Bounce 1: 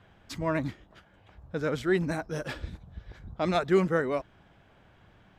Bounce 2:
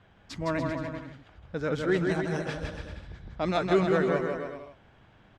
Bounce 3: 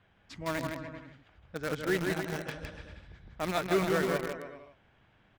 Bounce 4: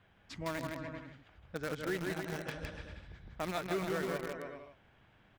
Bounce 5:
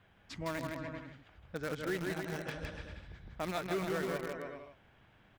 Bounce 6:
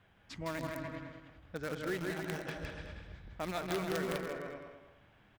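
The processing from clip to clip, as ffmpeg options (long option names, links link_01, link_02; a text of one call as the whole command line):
ffmpeg -i in.wav -filter_complex "[0:a]lowpass=7700,asplit=2[link_01][link_02];[link_02]aecho=0:1:160|288|390.4|472.3|537.9:0.631|0.398|0.251|0.158|0.1[link_03];[link_01][link_03]amix=inputs=2:normalize=0,volume=-1dB" out.wav
ffmpeg -i in.wav -filter_complex "[0:a]equalizer=frequency=2300:width_type=o:width=1.3:gain=4.5,asplit=2[link_01][link_02];[link_02]acrusher=bits=3:mix=0:aa=0.000001,volume=-6dB[link_03];[link_01][link_03]amix=inputs=2:normalize=0,volume=-8dB" out.wav
ffmpeg -i in.wav -af "acompressor=threshold=-35dB:ratio=2.5" out.wav
ffmpeg -i in.wav -af "asoftclip=type=tanh:threshold=-25dB,volume=1dB" out.wav
ffmpeg -i in.wav -filter_complex "[0:a]asplit=2[link_01][link_02];[link_02]adelay=209,lowpass=frequency=4200:poles=1,volume=-8.5dB,asplit=2[link_03][link_04];[link_04]adelay=209,lowpass=frequency=4200:poles=1,volume=0.24,asplit=2[link_05][link_06];[link_06]adelay=209,lowpass=frequency=4200:poles=1,volume=0.24[link_07];[link_01][link_03][link_05][link_07]amix=inputs=4:normalize=0,aeval=exprs='(mod(18.8*val(0)+1,2)-1)/18.8':channel_layout=same,volume=-1dB" out.wav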